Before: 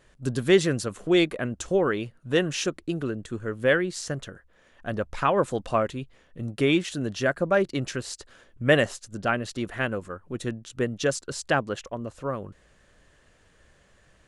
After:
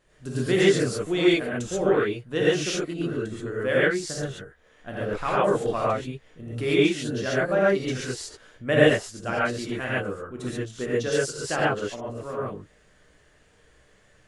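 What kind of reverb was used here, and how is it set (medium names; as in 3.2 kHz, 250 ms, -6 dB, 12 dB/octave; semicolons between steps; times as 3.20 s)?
gated-style reverb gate 160 ms rising, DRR -8 dB; trim -7 dB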